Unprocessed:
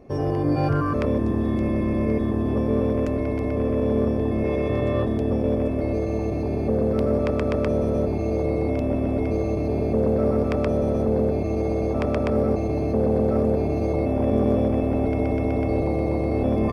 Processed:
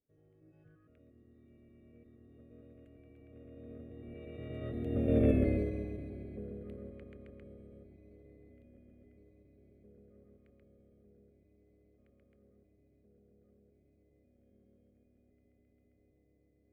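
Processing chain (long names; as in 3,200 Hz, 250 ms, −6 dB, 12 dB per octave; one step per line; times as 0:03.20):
source passing by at 0:05.32, 23 m/s, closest 5.2 metres
phaser with its sweep stopped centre 2,300 Hz, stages 4
expander for the loud parts 1.5 to 1, over −51 dBFS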